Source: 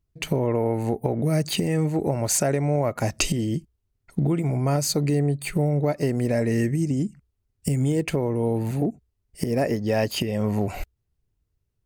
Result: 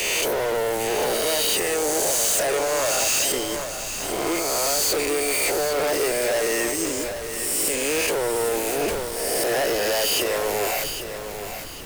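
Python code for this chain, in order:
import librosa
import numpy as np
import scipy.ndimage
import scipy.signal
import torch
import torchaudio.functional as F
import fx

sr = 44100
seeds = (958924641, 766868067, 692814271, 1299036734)

p1 = fx.spec_swells(x, sr, rise_s=1.24)
p2 = scipy.signal.sosfilt(scipy.signal.butter(4, 420.0, 'highpass', fs=sr, output='sos'), p1)
p3 = fx.high_shelf(p2, sr, hz=5600.0, db=10.0)
p4 = fx.leveller(p3, sr, passes=5)
p5 = fx.dmg_noise_colour(p4, sr, seeds[0], colour='pink', level_db=-35.0)
p6 = 10.0 ** (-16.5 / 20.0) * np.tanh(p5 / 10.0 ** (-16.5 / 20.0))
p7 = p6 + fx.echo_feedback(p6, sr, ms=802, feedback_pct=36, wet_db=-9.5, dry=0)
p8 = fx.sustainer(p7, sr, db_per_s=31.0)
y = p8 * 10.0 ** (-4.5 / 20.0)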